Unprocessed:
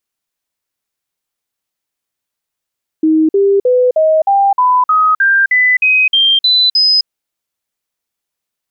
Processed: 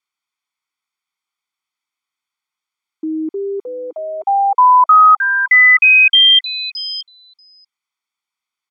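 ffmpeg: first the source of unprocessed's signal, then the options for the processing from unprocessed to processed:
-f lavfi -i "aevalsrc='0.447*clip(min(mod(t,0.31),0.26-mod(t,0.31))/0.005,0,1)*sin(2*PI*315*pow(2,floor(t/0.31)/3)*mod(t,0.31))':duration=4.03:sample_rate=44100"
-af "bandpass=frequency=1900:width_type=q:width=0.61:csg=0,aecho=1:1:0.9:0.77,aecho=1:1:637:0.075"

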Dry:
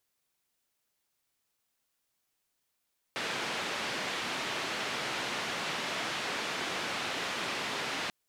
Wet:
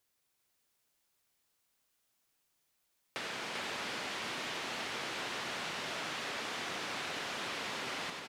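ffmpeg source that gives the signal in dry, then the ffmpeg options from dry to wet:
-f lavfi -i "anoisesrc=color=white:duration=4.94:sample_rate=44100:seed=1,highpass=frequency=160,lowpass=frequency=3100,volume=-21.8dB"
-filter_complex "[0:a]asplit=2[link_01][link_02];[link_02]aecho=0:1:94:0.335[link_03];[link_01][link_03]amix=inputs=2:normalize=0,acompressor=threshold=-38dB:ratio=5,asplit=2[link_04][link_05];[link_05]aecho=0:1:394:0.596[link_06];[link_04][link_06]amix=inputs=2:normalize=0"

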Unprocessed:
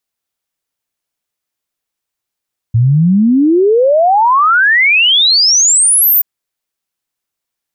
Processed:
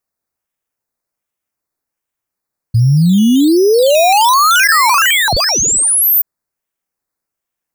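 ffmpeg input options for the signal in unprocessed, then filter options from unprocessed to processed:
-f lavfi -i "aevalsrc='0.501*clip(min(t,3.48-t)/0.01,0,1)*sin(2*PI*110*3.48/log(15000/110)*(exp(log(15000/110)*t/3.48)-1))':duration=3.48:sample_rate=44100"
-filter_complex "[0:a]equalizer=frequency=8600:width_type=o:width=1.6:gain=-2.5,acrossover=split=4700[link_01][link_02];[link_01]acrusher=samples=11:mix=1:aa=0.000001:lfo=1:lforange=6.6:lforate=1.3[link_03];[link_03][link_02]amix=inputs=2:normalize=0"

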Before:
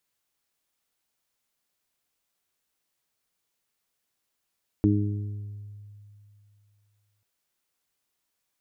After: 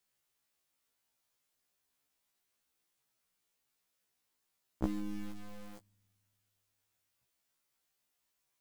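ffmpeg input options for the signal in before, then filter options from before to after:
-f lavfi -i "aevalsrc='0.0891*pow(10,-3*t/2.76)*sin(2*PI*103*t)+0.075*pow(10,-3*t/1.13)*sin(2*PI*206*t)+0.126*pow(10,-3*t/0.9)*sin(2*PI*309*t)+0.0251*pow(10,-3*t/1.22)*sin(2*PI*412*t)':duration=2.39:sample_rate=44100"
-filter_complex "[0:a]acompressor=threshold=-29dB:ratio=20,asplit=2[link_01][link_02];[link_02]acrusher=bits=4:dc=4:mix=0:aa=0.000001,volume=-3dB[link_03];[link_01][link_03]amix=inputs=2:normalize=0,afftfilt=real='re*1.73*eq(mod(b,3),0)':imag='im*1.73*eq(mod(b,3),0)':win_size=2048:overlap=0.75"

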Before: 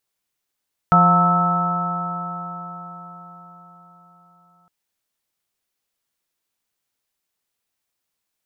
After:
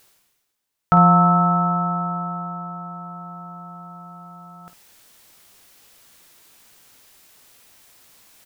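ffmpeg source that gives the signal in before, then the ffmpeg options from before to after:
-f lavfi -i "aevalsrc='0.178*pow(10,-3*t/4.86)*sin(2*PI*172.32*t)+0.02*pow(10,-3*t/4.86)*sin(2*PI*346.54*t)+0.0316*pow(10,-3*t/4.86)*sin(2*PI*524.52*t)+0.126*pow(10,-3*t/4.86)*sin(2*PI*708.07*t)+0.0891*pow(10,-3*t/4.86)*sin(2*PI*898.9*t)+0.0282*pow(10,-3*t/4.86)*sin(2*PI*1098.58*t)+0.266*pow(10,-3*t/4.86)*sin(2*PI*1308.6*t)':duration=3.76:sample_rate=44100"
-af "areverse,acompressor=mode=upward:threshold=-31dB:ratio=2.5,areverse,aecho=1:1:18|52:0.266|0.282"

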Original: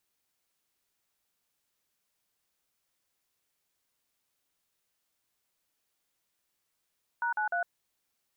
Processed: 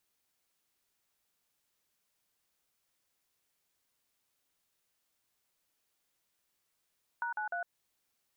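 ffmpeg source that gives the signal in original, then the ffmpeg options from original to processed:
-f lavfi -i "aevalsrc='0.0316*clip(min(mod(t,0.151),0.107-mod(t,0.151))/0.002,0,1)*(eq(floor(t/0.151),0)*(sin(2*PI*941*mod(t,0.151))+sin(2*PI*1477*mod(t,0.151)))+eq(floor(t/0.151),1)*(sin(2*PI*852*mod(t,0.151))+sin(2*PI*1477*mod(t,0.151)))+eq(floor(t/0.151),2)*(sin(2*PI*697*mod(t,0.151))+sin(2*PI*1477*mod(t,0.151))))':duration=0.453:sample_rate=44100"
-af "acompressor=threshold=-34dB:ratio=6"

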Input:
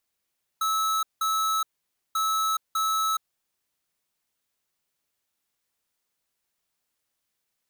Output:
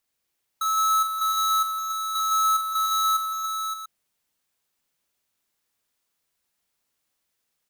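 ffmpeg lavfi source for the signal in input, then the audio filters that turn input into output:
-f lavfi -i "aevalsrc='0.0562*(2*lt(mod(1300*t,1),0.5)-1)*clip(min(mod(mod(t,1.54),0.6),0.42-mod(mod(t,1.54),0.6))/0.005,0,1)*lt(mod(t,1.54),1.2)':duration=3.08:sample_rate=44100"
-af "aecho=1:1:44|160|293|569|689:0.501|0.335|0.422|0.376|0.282"

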